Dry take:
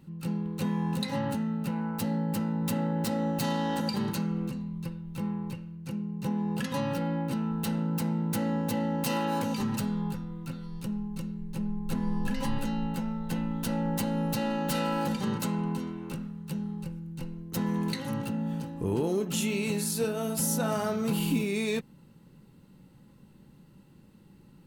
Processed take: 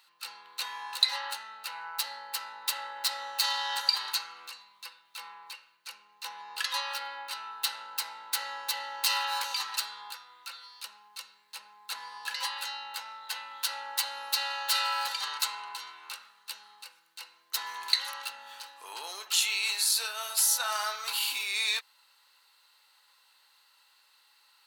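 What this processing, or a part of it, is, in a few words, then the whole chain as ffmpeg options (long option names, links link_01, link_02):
headphones lying on a table: -af "highpass=frequency=1000:width=0.5412,highpass=frequency=1000:width=1.3066,equalizer=frequency=4200:width_type=o:width=0.49:gain=10,volume=5dB"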